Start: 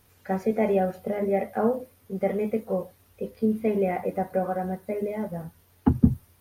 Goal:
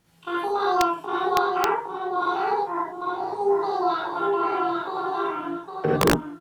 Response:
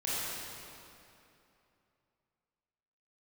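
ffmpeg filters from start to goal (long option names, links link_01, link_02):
-filter_complex "[0:a]asplit=2[link_01][link_02];[link_02]adelay=801,lowpass=frequency=1700:poles=1,volume=-3.5dB,asplit=2[link_03][link_04];[link_04]adelay=801,lowpass=frequency=1700:poles=1,volume=0.17,asplit=2[link_05][link_06];[link_06]adelay=801,lowpass=frequency=1700:poles=1,volume=0.17[link_07];[link_01][link_03][link_05][link_07]amix=inputs=4:normalize=0,asetrate=80880,aresample=44100,atempo=0.545254[link_08];[1:a]atrim=start_sample=2205,atrim=end_sample=3087,asetrate=27342,aresample=44100[link_09];[link_08][link_09]afir=irnorm=-1:irlink=0,aeval=exprs='(mod(2.11*val(0)+1,2)-1)/2.11':channel_layout=same,volume=-4dB"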